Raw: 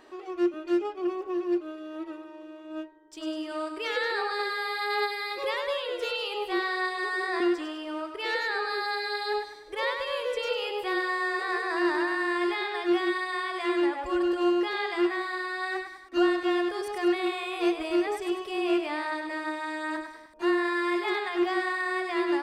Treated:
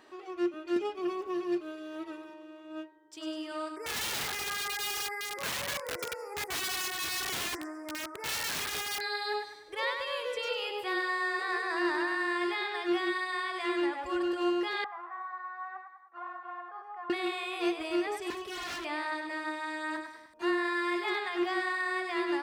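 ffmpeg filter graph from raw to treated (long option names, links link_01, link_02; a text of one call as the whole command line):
ffmpeg -i in.wav -filter_complex "[0:a]asettb=1/sr,asplit=3[link_01][link_02][link_03];[link_01]atrim=end=0.764[link_04];[link_02]atrim=start=0.76:end=2.34,asetpts=PTS-STARTPTS,afade=type=in:duration=0.004:curve=qsin,afade=type=out:start_time=1.576:duration=0.004:curve=qsin,equalizer=frequency=970:width=0.37:gain=-5.5,aecho=1:1:4.5:0.32,atrim=end_sample=69678,acontrast=67[link_05];[link_03]atrim=start=2.336[link_06];[link_04][link_05]acrossfade=duration=0.004:curve1=hsin:curve2=qsin[link_07];[link_07][link_06]acrossfade=duration=0.004:curve1=qsin:curve2=hsin,asettb=1/sr,asplit=3[link_08][link_09][link_10];[link_08]atrim=end=3.764[link_11];[link_09]atrim=start=3.76:end=9.01,asetpts=PTS-STARTPTS,afade=type=in:duration=0.004:curve=qsin,afade=type=out:start_time=5.246:duration=0.004:curve=qsin,asuperstop=centerf=3400:order=12:qfactor=1.1,lowshelf=frequency=78:gain=-11.5,aeval=exprs='(mod(22.4*val(0)+1,2)-1)/22.4':channel_layout=same[link_12];[link_10]atrim=start=9.006[link_13];[link_11][link_12]acrossfade=duration=0.004:curve1=hsin:curve2=qsin[link_14];[link_14][link_13]acrossfade=duration=0.004:curve1=qsin:curve2=hsin,asettb=1/sr,asplit=3[link_15][link_16][link_17];[link_15]atrim=end=14.844[link_18];[link_16]atrim=start=14.84:end=17.1,asetpts=PTS-STARTPTS,afade=type=in:duration=0.004:curve=qsin,afade=type=out:start_time=2.256:duration=0.004:curve=qsin,asoftclip=type=hard:threshold=-23.5dB,asuperpass=centerf=1000:order=4:qfactor=1.7[link_19];[link_17]atrim=start=17.096[link_20];[link_18][link_19]acrossfade=duration=0.004:curve1=hsin:curve2=qsin[link_21];[link_21][link_20]acrossfade=duration=0.004:curve1=qsin:curve2=hsin,asettb=1/sr,asplit=3[link_22][link_23][link_24];[link_22]atrim=end=18.304[link_25];[link_23]atrim=start=18.3:end=18.85,asetpts=PTS-STARTPTS,afade=type=in:duration=0.004:curve=qsin,afade=type=out:start_time=0.546:duration=0.004:curve=qsin,lowshelf=frequency=170:gain=9.5,aeval=exprs='0.0299*(abs(mod(val(0)/0.0299+3,4)-2)-1)':channel_layout=same[link_26];[link_24]atrim=start=18.846[link_27];[link_25][link_26]acrossfade=duration=0.004:curve1=hsin:curve2=qsin[link_28];[link_28][link_27]acrossfade=duration=0.004:curve1=qsin:curve2=hsin,highpass=73,equalizer=frequency=450:width_type=o:width=1.9:gain=-4,volume=-1.5dB" out.wav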